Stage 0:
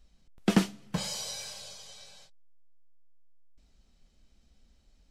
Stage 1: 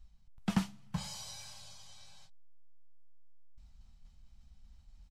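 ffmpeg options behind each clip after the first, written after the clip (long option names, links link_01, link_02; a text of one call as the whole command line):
ffmpeg -i in.wav -af "firequalizer=gain_entry='entry(110,0);entry(370,-23);entry(850,-5);entry(1600,-10)':delay=0.05:min_phase=1,areverse,acompressor=mode=upward:threshold=-48dB:ratio=2.5,areverse,volume=1dB" out.wav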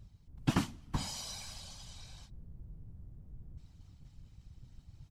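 ffmpeg -i in.wav -af "afftfilt=real='hypot(re,im)*cos(2*PI*random(0))':imag='hypot(re,im)*sin(2*PI*random(1))':win_size=512:overlap=0.75,volume=9dB" out.wav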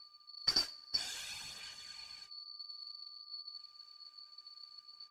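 ffmpeg -i in.wav -af "afftfilt=real='real(if(lt(b,272),68*(eq(floor(b/68),0)*1+eq(floor(b/68),1)*2+eq(floor(b/68),2)*3+eq(floor(b/68),3)*0)+mod(b,68),b),0)':imag='imag(if(lt(b,272),68*(eq(floor(b/68),0)*1+eq(floor(b/68),1)*2+eq(floor(b/68),2)*3+eq(floor(b/68),3)*0)+mod(b,68),b),0)':win_size=2048:overlap=0.75,aphaser=in_gain=1:out_gain=1:delay=3.3:decay=0.36:speed=0.59:type=sinusoidal,aeval=exprs='val(0)+0.000562*sin(2*PI*1200*n/s)':channel_layout=same,volume=-2.5dB" out.wav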